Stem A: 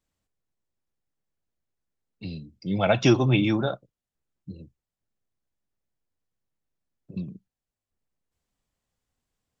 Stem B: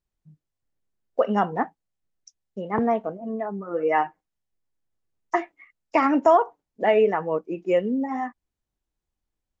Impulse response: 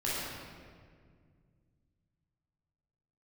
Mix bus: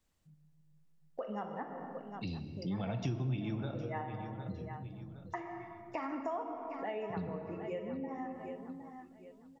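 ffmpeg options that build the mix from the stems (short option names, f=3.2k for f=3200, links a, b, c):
-filter_complex "[0:a]acrossover=split=220[a][b];[b]acompressor=threshold=-33dB:ratio=5[c];[a][c]amix=inputs=2:normalize=0,volume=1.5dB,asplit=4[d][e][f][g];[e]volume=-15.5dB[h];[f]volume=-17dB[i];[1:a]volume=-12.5dB,asplit=3[j][k][l];[k]volume=-10.5dB[m];[l]volume=-11.5dB[n];[g]apad=whole_len=423399[o];[j][o]sidechaincompress=threshold=-29dB:ratio=8:attack=16:release=215[p];[2:a]atrim=start_sample=2205[q];[h][m]amix=inputs=2:normalize=0[r];[r][q]afir=irnorm=-1:irlink=0[s];[i][n]amix=inputs=2:normalize=0,aecho=0:1:761|1522|2283|3044:1|0.29|0.0841|0.0244[t];[d][p][s][t]amix=inputs=4:normalize=0,acompressor=threshold=-40dB:ratio=2.5"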